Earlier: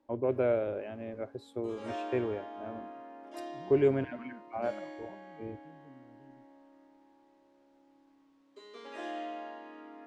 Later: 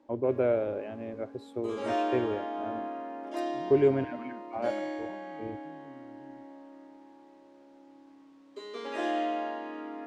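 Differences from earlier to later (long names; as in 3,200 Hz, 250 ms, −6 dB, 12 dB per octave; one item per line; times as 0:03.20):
background +7.5 dB
master: add parametric band 330 Hz +2.5 dB 2.3 octaves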